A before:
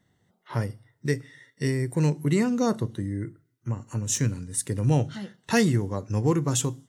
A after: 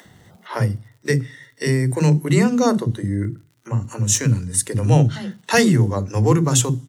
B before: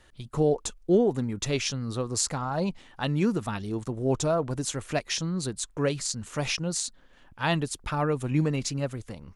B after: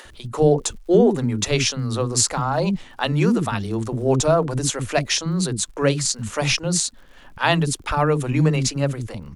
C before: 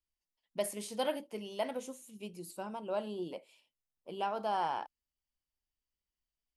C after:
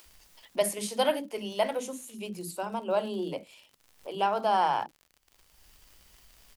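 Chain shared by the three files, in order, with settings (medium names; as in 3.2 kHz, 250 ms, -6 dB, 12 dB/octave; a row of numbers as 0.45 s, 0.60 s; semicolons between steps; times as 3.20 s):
bands offset in time highs, lows 50 ms, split 300 Hz; upward compressor, threshold -45 dBFS; crackle 72 per s -52 dBFS; trim +8.5 dB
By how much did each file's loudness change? +7.5 LU, +7.5 LU, +8.0 LU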